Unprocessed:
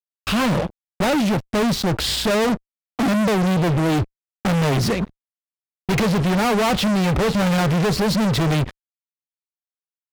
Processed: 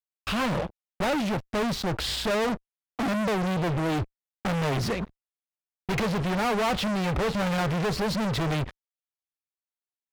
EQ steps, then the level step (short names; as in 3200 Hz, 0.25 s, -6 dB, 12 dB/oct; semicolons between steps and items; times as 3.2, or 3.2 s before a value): bell 200 Hz -4.5 dB 2.4 oct; high shelf 4200 Hz -6 dB; -4.5 dB